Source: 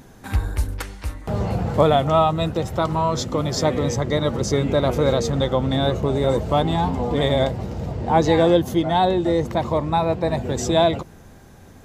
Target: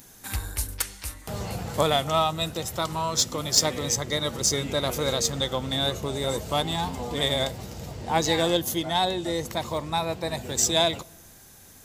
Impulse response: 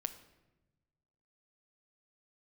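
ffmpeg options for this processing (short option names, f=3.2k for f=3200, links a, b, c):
-filter_complex "[0:a]crystalizer=i=8:c=0,aeval=exprs='1.41*(cos(1*acos(clip(val(0)/1.41,-1,1)))-cos(1*PI/2))+0.178*(cos(3*acos(clip(val(0)/1.41,-1,1)))-cos(3*PI/2))+0.0112*(cos(7*acos(clip(val(0)/1.41,-1,1)))-cos(7*PI/2))':c=same,asplit=2[a][b];[1:a]atrim=start_sample=2205[c];[b][c]afir=irnorm=-1:irlink=0,volume=-11dB[d];[a][d]amix=inputs=2:normalize=0,volume=-7.5dB"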